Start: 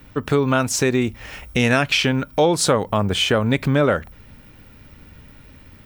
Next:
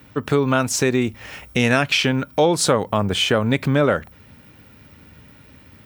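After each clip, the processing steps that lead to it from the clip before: HPF 81 Hz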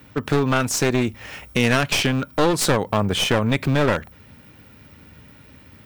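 one-sided fold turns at -18.5 dBFS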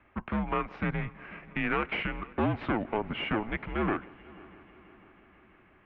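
mistuned SSB -220 Hz 320–2800 Hz; multi-head echo 0.164 s, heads first and third, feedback 68%, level -23.5 dB; gain -8 dB

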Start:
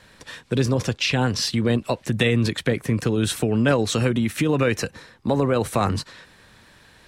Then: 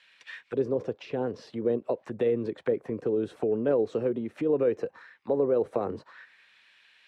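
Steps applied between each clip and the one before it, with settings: auto-wah 440–2800 Hz, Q 2.6, down, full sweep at -19.5 dBFS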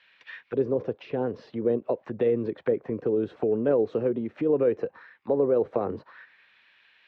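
air absorption 210 m; gain +2.5 dB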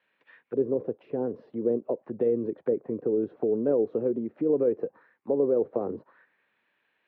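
band-pass 320 Hz, Q 0.77

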